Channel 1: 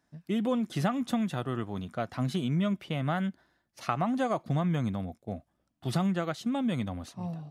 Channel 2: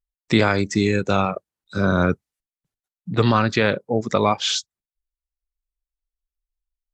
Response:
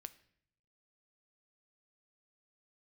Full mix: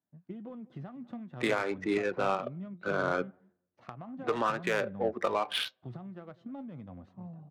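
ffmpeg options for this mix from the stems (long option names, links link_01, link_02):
-filter_complex "[0:a]agate=range=-8dB:threshold=-60dB:ratio=16:detection=peak,highpass=frequency=81:width=0.5412,highpass=frequency=81:width=1.3066,acompressor=threshold=-33dB:ratio=6,volume=-2.5dB,asplit=3[link_01][link_02][link_03];[link_02]volume=-20.5dB[link_04];[1:a]acrossover=split=320 3500:gain=0.0708 1 0.0794[link_05][link_06][link_07];[link_05][link_06][link_07]amix=inputs=3:normalize=0,adelay=1100,volume=1dB,asplit=2[link_08][link_09];[link_09]volume=-6dB[link_10];[link_03]apad=whole_len=354369[link_11];[link_08][link_11]sidechaincompress=threshold=-41dB:ratio=8:attack=16:release=316[link_12];[2:a]atrim=start_sample=2205[link_13];[link_10][link_13]afir=irnorm=-1:irlink=0[link_14];[link_04]aecho=0:1:197:1[link_15];[link_01][link_12][link_14][link_15]amix=inputs=4:normalize=0,flanger=delay=5.1:depth=3.3:regen=74:speed=0.41:shape=sinusoidal,adynamicsmooth=sensitivity=3:basefreq=1300,alimiter=limit=-18dB:level=0:latency=1:release=143"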